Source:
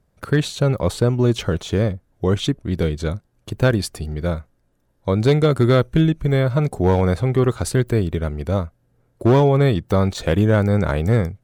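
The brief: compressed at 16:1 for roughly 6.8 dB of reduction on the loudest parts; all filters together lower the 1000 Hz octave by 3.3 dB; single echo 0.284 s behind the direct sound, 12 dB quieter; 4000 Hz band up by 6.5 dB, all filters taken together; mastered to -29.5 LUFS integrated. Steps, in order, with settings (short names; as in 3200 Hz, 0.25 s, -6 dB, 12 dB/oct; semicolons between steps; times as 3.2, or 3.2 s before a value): bell 1000 Hz -5 dB; bell 4000 Hz +8 dB; compressor 16:1, threshold -18 dBFS; echo 0.284 s -12 dB; gain -5.5 dB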